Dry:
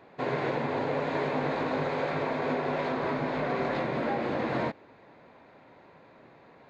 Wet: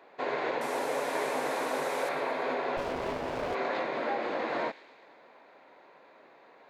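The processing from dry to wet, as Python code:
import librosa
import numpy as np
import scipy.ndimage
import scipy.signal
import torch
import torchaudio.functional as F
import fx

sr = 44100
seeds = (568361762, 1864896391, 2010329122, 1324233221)

y = fx.delta_mod(x, sr, bps=64000, step_db=-36.0, at=(0.61, 2.09))
y = scipy.signal.sosfilt(scipy.signal.butter(2, 400.0, 'highpass', fs=sr, output='sos'), y)
y = fx.echo_wet_highpass(y, sr, ms=113, feedback_pct=63, hz=2400.0, wet_db=-13)
y = fx.running_max(y, sr, window=17, at=(2.77, 3.55))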